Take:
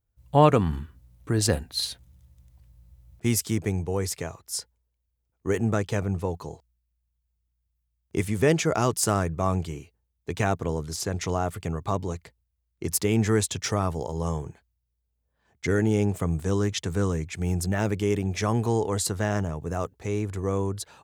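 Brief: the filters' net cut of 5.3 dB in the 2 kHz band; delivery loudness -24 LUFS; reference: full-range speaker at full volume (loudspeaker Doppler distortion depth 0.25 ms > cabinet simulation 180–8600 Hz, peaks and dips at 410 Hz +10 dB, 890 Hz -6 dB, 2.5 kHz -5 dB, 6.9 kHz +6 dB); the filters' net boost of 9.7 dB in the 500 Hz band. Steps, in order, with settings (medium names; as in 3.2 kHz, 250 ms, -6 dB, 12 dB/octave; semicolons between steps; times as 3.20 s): peaking EQ 500 Hz +4.5 dB; peaking EQ 2 kHz -5.5 dB; loudspeaker Doppler distortion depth 0.25 ms; cabinet simulation 180–8600 Hz, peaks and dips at 410 Hz +10 dB, 890 Hz -6 dB, 2.5 kHz -5 dB, 6.9 kHz +6 dB; trim -2 dB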